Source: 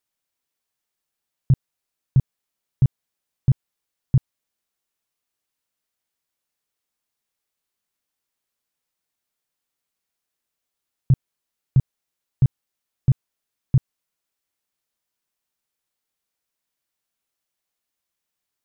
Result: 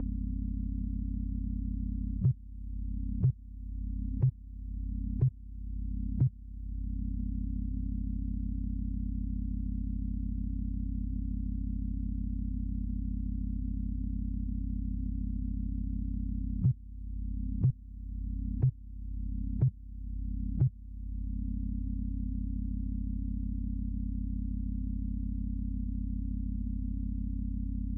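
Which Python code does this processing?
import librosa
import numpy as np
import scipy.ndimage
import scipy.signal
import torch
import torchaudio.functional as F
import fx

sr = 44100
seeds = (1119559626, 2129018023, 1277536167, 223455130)

y = fx.spec_quant(x, sr, step_db=15)
y = fx.bass_treble(y, sr, bass_db=14, treble_db=1)
y = fx.add_hum(y, sr, base_hz=50, snr_db=10)
y = fx.stretch_vocoder(y, sr, factor=1.5)
y = fx.band_squash(y, sr, depth_pct=100)
y = y * 10.0 ** (-8.0 / 20.0)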